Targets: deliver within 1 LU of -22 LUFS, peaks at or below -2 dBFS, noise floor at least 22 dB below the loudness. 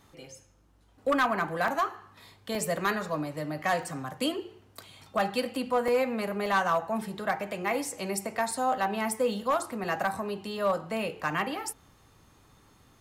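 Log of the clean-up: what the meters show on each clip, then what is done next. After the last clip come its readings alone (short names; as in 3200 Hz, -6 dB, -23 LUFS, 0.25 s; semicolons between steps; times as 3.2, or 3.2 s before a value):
clipped 0.4%; flat tops at -19.0 dBFS; dropouts 7; longest dropout 2.5 ms; loudness -30.0 LUFS; peak -19.0 dBFS; loudness target -22.0 LUFS
-> clip repair -19 dBFS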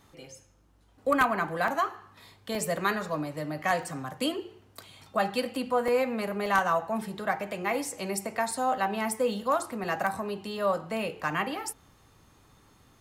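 clipped 0.0%; dropouts 7; longest dropout 2.5 ms
-> interpolate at 1.68/2.55/3.83/5.88/6.46/8.51/9.84, 2.5 ms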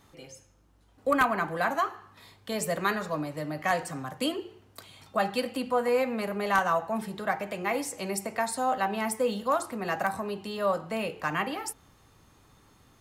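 dropouts 0; loudness -29.5 LUFS; peak -10.0 dBFS; loudness target -22.0 LUFS
-> gain +7.5 dB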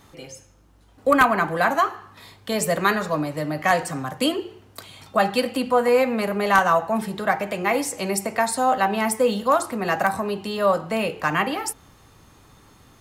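loudness -22.0 LUFS; peak -2.5 dBFS; noise floor -53 dBFS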